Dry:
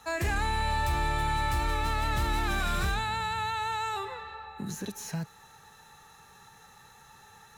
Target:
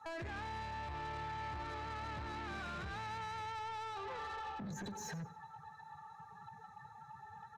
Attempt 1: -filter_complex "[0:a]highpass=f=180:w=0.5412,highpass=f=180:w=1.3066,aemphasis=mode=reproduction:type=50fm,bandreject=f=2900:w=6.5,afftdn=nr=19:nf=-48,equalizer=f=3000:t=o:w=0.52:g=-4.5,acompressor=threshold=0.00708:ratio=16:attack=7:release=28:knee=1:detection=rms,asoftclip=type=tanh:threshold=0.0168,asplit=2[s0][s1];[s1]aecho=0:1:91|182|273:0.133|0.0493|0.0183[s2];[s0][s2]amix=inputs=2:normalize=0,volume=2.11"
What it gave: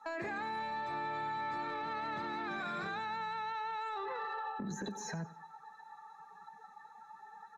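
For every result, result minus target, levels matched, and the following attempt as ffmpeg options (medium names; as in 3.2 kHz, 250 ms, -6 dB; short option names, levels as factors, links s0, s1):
saturation: distortion -15 dB; 125 Hz band -8.0 dB
-filter_complex "[0:a]highpass=f=180:w=0.5412,highpass=f=180:w=1.3066,aemphasis=mode=reproduction:type=50fm,bandreject=f=2900:w=6.5,afftdn=nr=19:nf=-48,equalizer=f=3000:t=o:w=0.52:g=-4.5,acompressor=threshold=0.00708:ratio=16:attack=7:release=28:knee=1:detection=rms,asoftclip=type=tanh:threshold=0.00447,asplit=2[s0][s1];[s1]aecho=0:1:91|182|273:0.133|0.0493|0.0183[s2];[s0][s2]amix=inputs=2:normalize=0,volume=2.11"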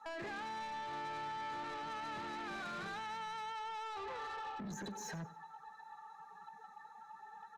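125 Hz band -7.0 dB
-filter_complex "[0:a]highpass=f=71:w=0.5412,highpass=f=71:w=1.3066,aemphasis=mode=reproduction:type=50fm,bandreject=f=2900:w=6.5,afftdn=nr=19:nf=-48,equalizer=f=3000:t=o:w=0.52:g=-4.5,acompressor=threshold=0.00708:ratio=16:attack=7:release=28:knee=1:detection=rms,asoftclip=type=tanh:threshold=0.00447,asplit=2[s0][s1];[s1]aecho=0:1:91|182|273:0.133|0.0493|0.0183[s2];[s0][s2]amix=inputs=2:normalize=0,volume=2.11"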